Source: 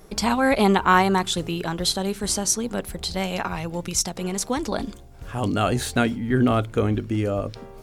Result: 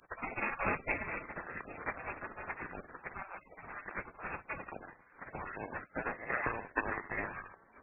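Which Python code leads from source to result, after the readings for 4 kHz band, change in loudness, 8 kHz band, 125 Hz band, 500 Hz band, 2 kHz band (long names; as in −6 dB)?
below −40 dB, −16.5 dB, below −40 dB, −24.0 dB, −18.5 dB, −8.5 dB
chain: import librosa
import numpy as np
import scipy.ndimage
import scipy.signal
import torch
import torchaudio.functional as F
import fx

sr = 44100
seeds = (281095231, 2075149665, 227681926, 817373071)

y = fx.room_early_taps(x, sr, ms=(31, 65, 77), db=(-13.5, -9.0, -11.0))
y = fx.transient(y, sr, attack_db=10, sustain_db=-3)
y = fx.spec_gate(y, sr, threshold_db=-30, keep='weak')
y = np.repeat(scipy.signal.resample_poly(y, 1, 8), 8)[:len(y)]
y = fx.freq_invert(y, sr, carrier_hz=2600)
y = y * librosa.db_to_amplitude(7.5)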